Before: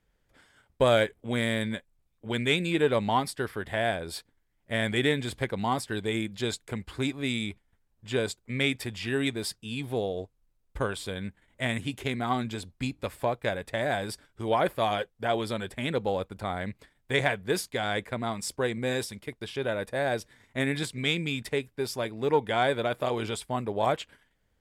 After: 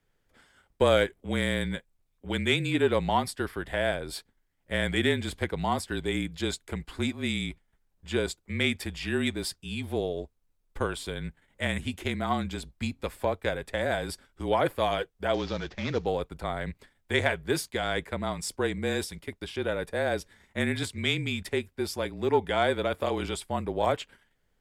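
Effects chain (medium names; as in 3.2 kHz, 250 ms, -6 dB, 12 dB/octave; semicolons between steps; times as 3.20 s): 15.34–16.06 s: CVSD coder 32 kbps; frequency shift -32 Hz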